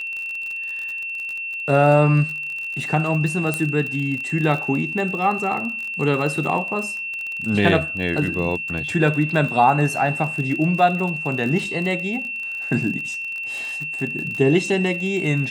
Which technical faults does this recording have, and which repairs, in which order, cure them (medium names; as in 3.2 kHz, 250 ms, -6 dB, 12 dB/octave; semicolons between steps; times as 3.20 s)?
crackle 39 per s -27 dBFS
whine 2.7 kHz -26 dBFS
3.54 s: pop -8 dBFS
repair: de-click; band-stop 2.7 kHz, Q 30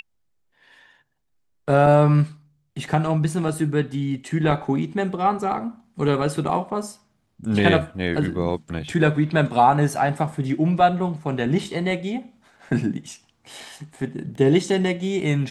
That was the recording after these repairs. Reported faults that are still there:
nothing left